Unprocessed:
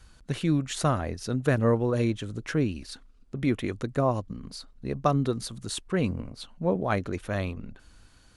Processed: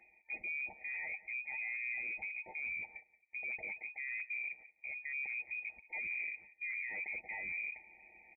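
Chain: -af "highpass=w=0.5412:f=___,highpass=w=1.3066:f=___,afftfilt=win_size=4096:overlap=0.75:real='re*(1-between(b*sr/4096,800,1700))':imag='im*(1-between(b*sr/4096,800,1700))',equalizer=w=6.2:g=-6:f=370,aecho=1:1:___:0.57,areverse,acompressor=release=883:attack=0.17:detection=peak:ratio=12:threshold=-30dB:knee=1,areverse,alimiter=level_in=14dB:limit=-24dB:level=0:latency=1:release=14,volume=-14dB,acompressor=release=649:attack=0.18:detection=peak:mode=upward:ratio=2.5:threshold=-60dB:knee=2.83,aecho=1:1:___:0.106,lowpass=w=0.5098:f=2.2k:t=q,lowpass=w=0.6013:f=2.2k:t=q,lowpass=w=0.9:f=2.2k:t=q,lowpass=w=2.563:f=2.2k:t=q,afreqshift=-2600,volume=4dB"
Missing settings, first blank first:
120, 120, 7.1, 177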